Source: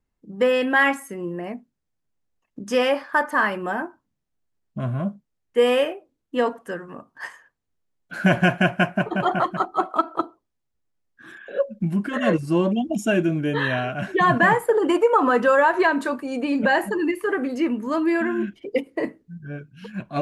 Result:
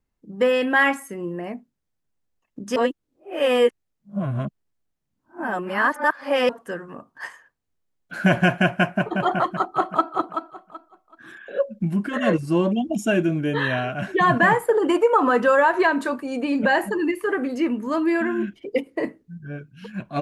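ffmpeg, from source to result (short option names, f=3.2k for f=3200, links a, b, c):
-filter_complex "[0:a]asplit=2[a][b];[b]afade=t=in:st=9.38:d=0.01,afade=t=out:st=10.12:d=0.01,aecho=0:1:380|760|1140:0.446684|0.111671|0.0279177[c];[a][c]amix=inputs=2:normalize=0,asplit=3[d][e][f];[d]atrim=end=2.762[g];[e]atrim=start=2.758:end=6.492,asetpts=PTS-STARTPTS,areverse[h];[f]atrim=start=6.488[i];[g][h]acrossfade=d=0.004:c1=hsin:c2=hsin[j];[j][i]acrossfade=d=0.004:c1=hsin:c2=hsin"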